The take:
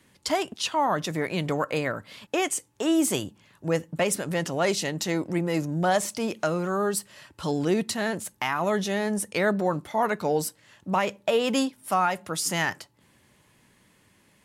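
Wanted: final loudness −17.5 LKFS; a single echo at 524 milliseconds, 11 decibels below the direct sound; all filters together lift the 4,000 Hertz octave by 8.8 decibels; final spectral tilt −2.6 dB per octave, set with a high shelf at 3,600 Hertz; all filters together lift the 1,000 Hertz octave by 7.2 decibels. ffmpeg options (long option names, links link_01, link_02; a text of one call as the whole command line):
ffmpeg -i in.wav -af "equalizer=frequency=1000:width_type=o:gain=8.5,highshelf=frequency=3600:gain=7.5,equalizer=frequency=4000:width_type=o:gain=6,aecho=1:1:524:0.282,volume=4.5dB" out.wav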